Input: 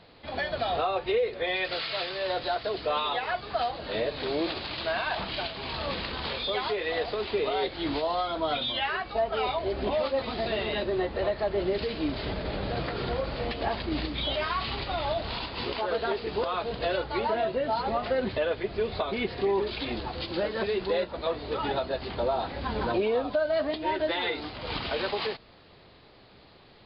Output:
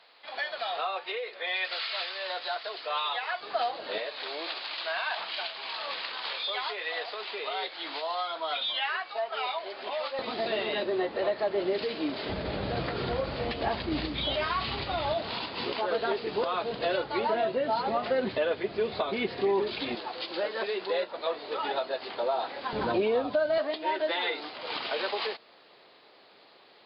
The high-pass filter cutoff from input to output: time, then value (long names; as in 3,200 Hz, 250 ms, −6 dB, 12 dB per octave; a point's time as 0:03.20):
860 Hz
from 0:03.41 390 Hz
from 0:03.98 820 Hz
from 0:10.19 250 Hz
from 0:12.29 68 Hz
from 0:15.14 160 Hz
from 0:19.95 450 Hz
from 0:22.73 120 Hz
from 0:23.58 410 Hz